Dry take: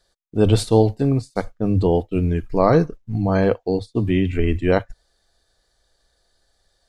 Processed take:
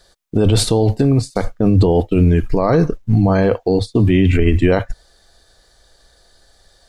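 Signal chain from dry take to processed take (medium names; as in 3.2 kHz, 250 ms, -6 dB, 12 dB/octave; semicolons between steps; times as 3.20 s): in parallel at 0 dB: compressor with a negative ratio -20 dBFS; on the sum: peak limiter -11 dBFS, peak gain reduction 10.5 dB; trim +5.5 dB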